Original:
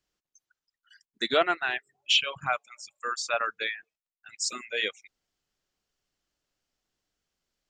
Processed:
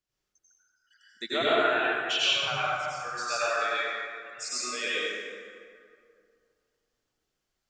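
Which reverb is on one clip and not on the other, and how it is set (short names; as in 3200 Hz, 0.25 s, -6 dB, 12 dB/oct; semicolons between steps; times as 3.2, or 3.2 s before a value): plate-style reverb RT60 2.3 s, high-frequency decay 0.55×, pre-delay 75 ms, DRR -9.5 dB; gain -8 dB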